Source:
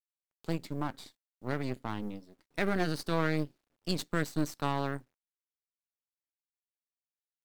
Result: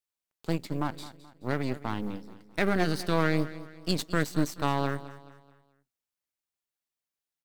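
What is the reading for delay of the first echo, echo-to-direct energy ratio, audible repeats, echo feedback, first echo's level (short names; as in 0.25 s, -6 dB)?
0.214 s, -15.0 dB, 3, 41%, -16.0 dB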